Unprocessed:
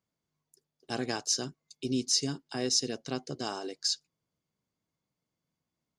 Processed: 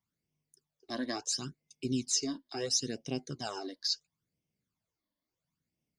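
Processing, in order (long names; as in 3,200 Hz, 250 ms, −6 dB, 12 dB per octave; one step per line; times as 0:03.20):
all-pass phaser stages 12, 0.73 Hz, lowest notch 130–1,400 Hz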